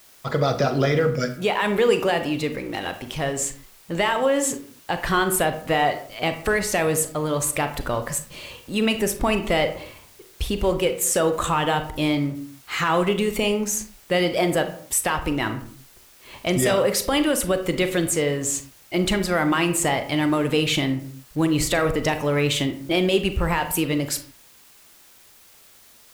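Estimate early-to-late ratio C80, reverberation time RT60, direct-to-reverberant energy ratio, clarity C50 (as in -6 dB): 14.5 dB, not exponential, 8.0 dB, 11.0 dB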